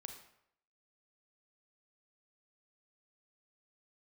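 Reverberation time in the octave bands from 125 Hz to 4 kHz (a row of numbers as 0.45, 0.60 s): 0.70, 0.65, 0.75, 0.70, 0.65, 0.55 s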